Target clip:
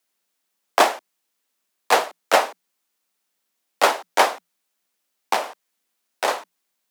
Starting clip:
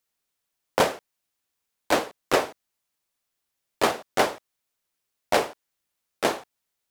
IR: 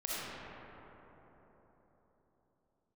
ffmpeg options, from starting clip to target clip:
-filter_complex "[0:a]asettb=1/sr,asplit=3[link_01][link_02][link_03];[link_01]atrim=end=5.334[link_04];[link_02]atrim=start=5.33:end=6.28,asetpts=PTS-STARTPTS,afade=type=in:duration=0.004:curve=qsin,afade=type=out:start_time=0.946:duration=0.004:curve=qsin,acompressor=threshold=-24dB:ratio=5[link_05];[link_03]atrim=start=6.276[link_06];[link_04][link_05]acrossfade=duration=0.004:curve1=hsin:curve2=qsin[link_07];[link_07][link_06]acrossfade=duration=0.004:curve1=qsin:curve2=hsin,afreqshift=170,volume=5dB"

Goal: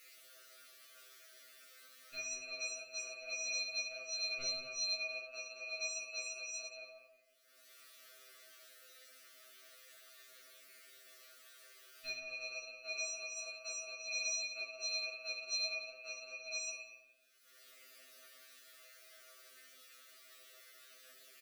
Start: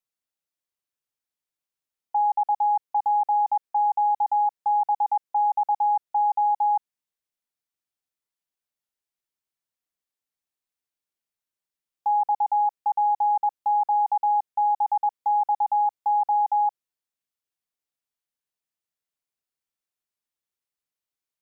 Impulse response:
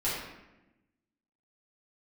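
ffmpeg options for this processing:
-filter_complex "[0:a]highpass=650,asetnsamples=nb_out_samples=441:pad=0,asendcmd='2.32 equalizer g -2;4.4 equalizer g 10.5',equalizer=frequency=860:width=1.5:gain=9.5,acompressor=threshold=-21dB:ratio=6,alimiter=limit=-22dB:level=0:latency=1:release=17,acompressor=mode=upward:threshold=-50dB:ratio=2.5,flanger=delay=7.3:depth=4.4:regen=27:speed=0.28:shape=sinusoidal,asoftclip=type=tanh:threshold=-33.5dB,asuperstop=centerf=890:order=20:qfactor=1.8,asplit=2[link_01][link_02];[link_02]adelay=177,lowpass=frequency=850:poles=1,volume=-7.5dB,asplit=2[link_03][link_04];[link_04]adelay=177,lowpass=frequency=850:poles=1,volume=0.42,asplit=2[link_05][link_06];[link_06]adelay=177,lowpass=frequency=850:poles=1,volume=0.42,asplit=2[link_07][link_08];[link_08]adelay=177,lowpass=frequency=850:poles=1,volume=0.42,asplit=2[link_09][link_10];[link_10]adelay=177,lowpass=frequency=850:poles=1,volume=0.42[link_11];[link_01][link_03][link_05][link_07][link_09][link_11]amix=inputs=6:normalize=0[link_12];[1:a]atrim=start_sample=2205[link_13];[link_12][link_13]afir=irnorm=-1:irlink=0,afftfilt=real='re*2.45*eq(mod(b,6),0)':imag='im*2.45*eq(mod(b,6),0)':win_size=2048:overlap=0.75,volume=10dB"

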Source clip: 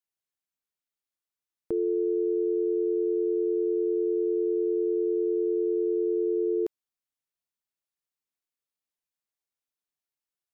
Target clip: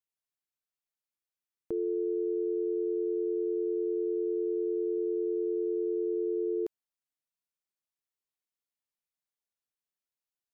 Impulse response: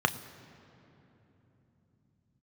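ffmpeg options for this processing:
-filter_complex "[0:a]asettb=1/sr,asplit=3[link_01][link_02][link_03];[link_01]atrim=end=4.984[link_04];[link_02]atrim=start=4.98:end=6.14,asetpts=PTS-STARTPTS,afade=type=in:duration=0.004:curve=qsin,afade=type=out:start_time=1.156:duration=0.004:curve=qsin,highpass=40[link_05];[link_03]atrim=start=6.136[link_06];[link_04][link_05]acrossfade=duration=0.004:curve1=hsin:curve2=qsin[link_07];[link_07][link_06]acrossfade=duration=0.004:curve1=qsin:curve2=hsin,volume=-4.5dB"

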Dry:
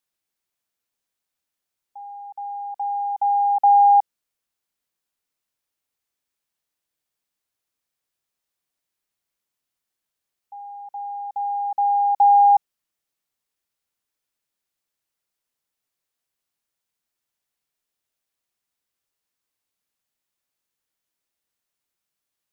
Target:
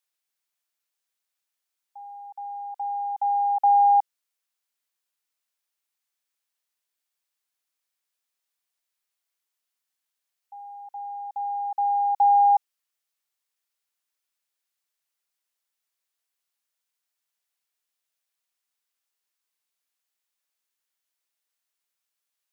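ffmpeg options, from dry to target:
ffmpeg -i in.wav -af "highpass=frequency=980:poles=1" out.wav

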